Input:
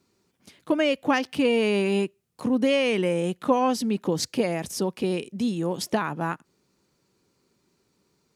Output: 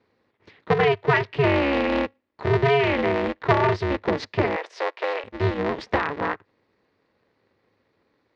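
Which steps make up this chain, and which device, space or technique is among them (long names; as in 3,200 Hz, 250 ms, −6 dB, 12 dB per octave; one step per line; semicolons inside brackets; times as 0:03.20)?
ring modulator pedal into a guitar cabinet (ring modulator with a square carrier 140 Hz; loudspeaker in its box 97–3,900 Hz, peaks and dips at 100 Hz +8 dB, 440 Hz +6 dB, 1,000 Hz +4 dB, 1,900 Hz +8 dB, 3,100 Hz −3 dB)
0:04.56–0:05.24: Butterworth high-pass 430 Hz 36 dB per octave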